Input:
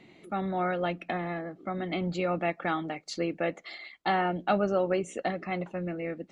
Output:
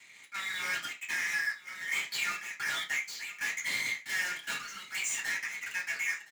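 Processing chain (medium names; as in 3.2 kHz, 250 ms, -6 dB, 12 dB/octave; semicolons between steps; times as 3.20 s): steep high-pass 1.6 kHz 48 dB/octave; waveshaping leveller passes 5; compression, threshold -37 dBFS, peak gain reduction 11 dB; peak limiter -35.5 dBFS, peak gain reduction 8 dB; level rider gain up to 13.5 dB; hard clipper -33 dBFS, distortion -9 dB; trance gate "..xxx.xxx" 88 bpm -12 dB; saturation -37.5 dBFS, distortion -18 dB; delay 1016 ms -19.5 dB; reverberation RT60 0.25 s, pre-delay 3 ms, DRR -5.5 dB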